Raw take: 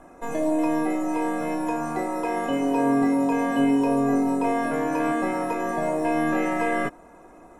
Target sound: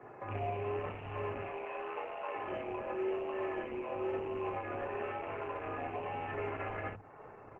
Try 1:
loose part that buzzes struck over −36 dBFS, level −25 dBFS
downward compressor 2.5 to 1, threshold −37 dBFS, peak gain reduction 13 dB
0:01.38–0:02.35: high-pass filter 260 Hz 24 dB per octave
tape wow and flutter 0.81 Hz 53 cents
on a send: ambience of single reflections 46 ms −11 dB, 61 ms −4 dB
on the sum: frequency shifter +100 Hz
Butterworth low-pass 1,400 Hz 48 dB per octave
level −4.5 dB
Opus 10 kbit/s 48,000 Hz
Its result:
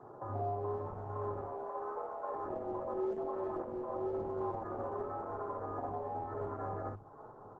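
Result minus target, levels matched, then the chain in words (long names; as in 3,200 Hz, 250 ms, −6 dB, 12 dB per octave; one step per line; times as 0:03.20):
2,000 Hz band −13.0 dB
loose part that buzzes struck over −36 dBFS, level −25 dBFS
downward compressor 2.5 to 1, threshold −37 dBFS, peak gain reduction 13 dB
0:01.38–0:02.35: high-pass filter 260 Hz 24 dB per octave
tape wow and flutter 0.81 Hz 53 cents
on a send: ambience of single reflections 46 ms −11 dB, 61 ms −4 dB
on the sum: frequency shifter +100 Hz
Butterworth low-pass 2,800 Hz 48 dB per octave
level −4.5 dB
Opus 10 kbit/s 48,000 Hz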